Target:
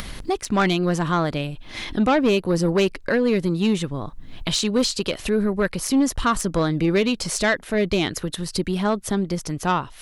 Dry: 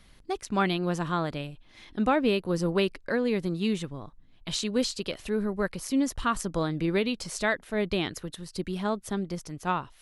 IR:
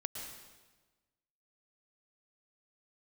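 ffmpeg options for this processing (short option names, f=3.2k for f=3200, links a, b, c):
-af "aeval=exprs='0.282*(cos(1*acos(clip(val(0)/0.282,-1,1)))-cos(1*PI/2))+0.0562*(cos(5*acos(clip(val(0)/0.282,-1,1)))-cos(5*PI/2))':c=same,acompressor=mode=upward:threshold=-23dB:ratio=2.5,volume=2.5dB"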